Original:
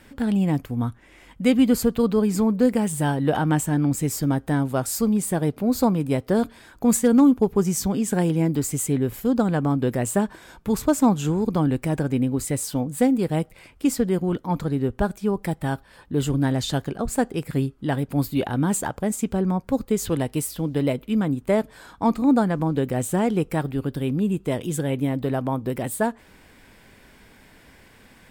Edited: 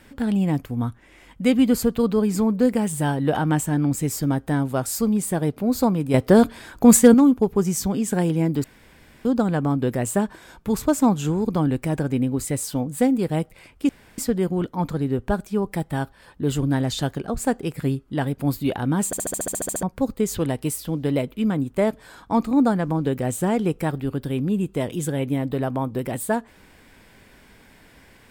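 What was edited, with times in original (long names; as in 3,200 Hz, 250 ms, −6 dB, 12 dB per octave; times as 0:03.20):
0:06.14–0:07.14: clip gain +7 dB
0:08.64–0:09.25: fill with room tone
0:13.89: splice in room tone 0.29 s
0:18.77: stutter in place 0.07 s, 11 plays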